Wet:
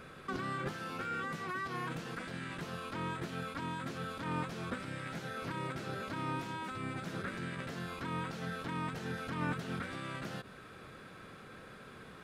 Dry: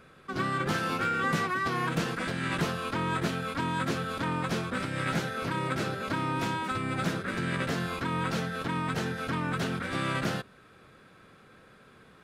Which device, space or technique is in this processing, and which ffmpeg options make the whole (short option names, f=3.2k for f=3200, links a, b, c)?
de-esser from a sidechain: -filter_complex "[0:a]asplit=2[a][b];[b]highpass=5k,apad=whole_len=539612[c];[a][c]sidechaincompress=threshold=-58dB:ratio=16:attack=2.5:release=66,volume=4dB"